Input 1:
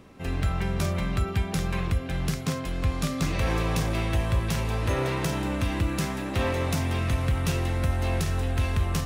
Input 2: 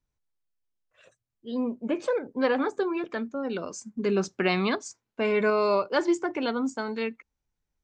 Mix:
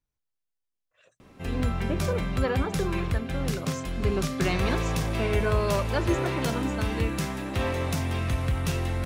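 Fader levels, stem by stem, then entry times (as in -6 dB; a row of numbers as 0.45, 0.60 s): -1.5, -4.0 dB; 1.20, 0.00 s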